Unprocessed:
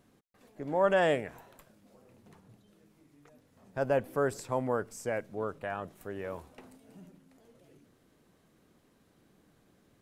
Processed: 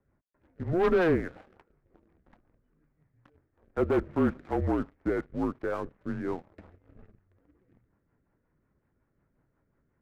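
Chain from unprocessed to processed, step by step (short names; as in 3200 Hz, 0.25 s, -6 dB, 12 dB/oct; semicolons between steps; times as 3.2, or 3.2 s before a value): mistuned SSB -170 Hz 190–2200 Hz; sample leveller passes 2; rotary speaker horn 5.5 Hz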